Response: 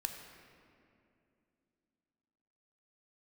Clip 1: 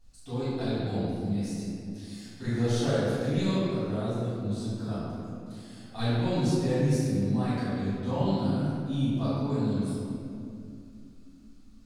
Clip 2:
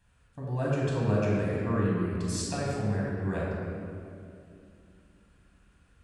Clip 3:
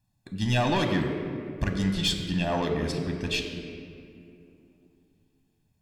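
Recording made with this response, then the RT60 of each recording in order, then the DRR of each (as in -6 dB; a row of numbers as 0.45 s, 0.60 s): 3; 2.6 s, 2.6 s, 2.6 s; -14.0 dB, -5.5 dB, 4.0 dB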